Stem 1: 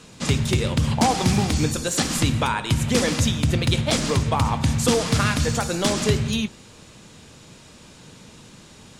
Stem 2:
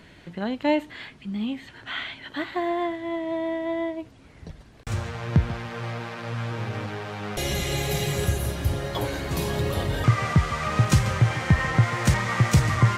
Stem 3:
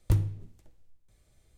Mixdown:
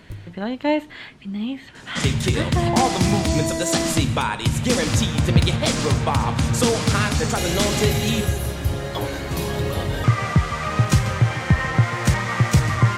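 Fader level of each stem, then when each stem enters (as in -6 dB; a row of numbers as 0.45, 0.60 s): +0.5, +2.0, -11.0 dB; 1.75, 0.00, 0.00 s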